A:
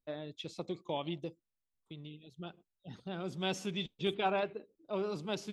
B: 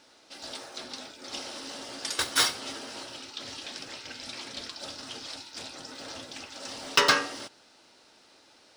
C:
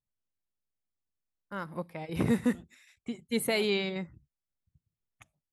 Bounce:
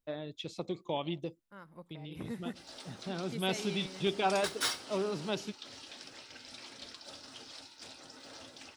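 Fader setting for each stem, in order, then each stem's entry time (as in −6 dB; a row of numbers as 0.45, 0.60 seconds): +2.0, −9.0, −14.0 decibels; 0.00, 2.25, 0.00 seconds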